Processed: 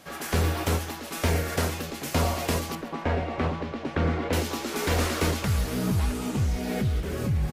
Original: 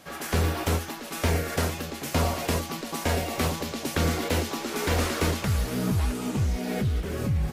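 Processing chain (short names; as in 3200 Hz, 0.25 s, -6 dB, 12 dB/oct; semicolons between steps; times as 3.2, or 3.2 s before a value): 2.75–4.33 LPF 2100 Hz 12 dB/oct; feedback echo 0.134 s, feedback 28%, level -16 dB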